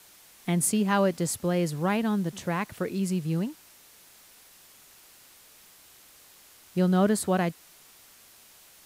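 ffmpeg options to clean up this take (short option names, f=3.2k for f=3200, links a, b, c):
-af "adeclick=t=4,afwtdn=0.0022"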